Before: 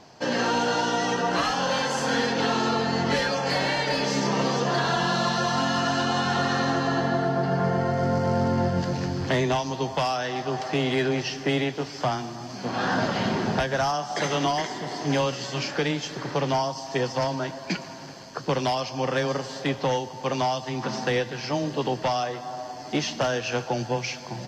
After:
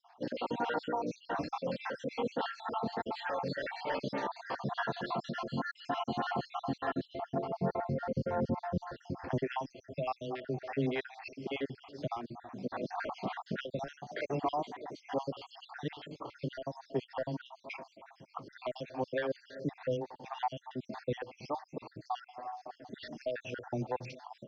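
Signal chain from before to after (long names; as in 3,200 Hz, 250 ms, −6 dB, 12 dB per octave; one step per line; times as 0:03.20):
time-frequency cells dropped at random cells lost 58%
high-frequency loss of the air 200 metres
phaser with staggered stages 3.4 Hz
level −4 dB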